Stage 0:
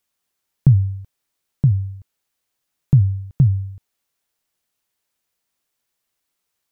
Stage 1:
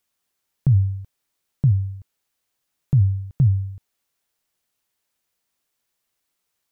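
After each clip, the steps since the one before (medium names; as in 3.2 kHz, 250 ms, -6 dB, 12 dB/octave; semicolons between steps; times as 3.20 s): peak limiter -10.5 dBFS, peak gain reduction 7 dB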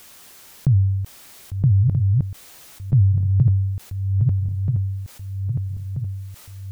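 backward echo that repeats 641 ms, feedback 52%, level -4 dB; level flattener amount 50%; trim -1.5 dB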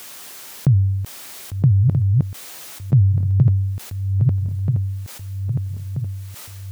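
high-pass 210 Hz 6 dB/octave; trim +8 dB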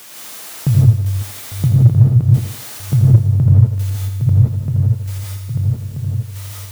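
thinning echo 83 ms, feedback 68%, high-pass 200 Hz, level -8 dB; gated-style reverb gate 200 ms rising, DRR -4 dB; word length cut 8-bit, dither none; trim -1 dB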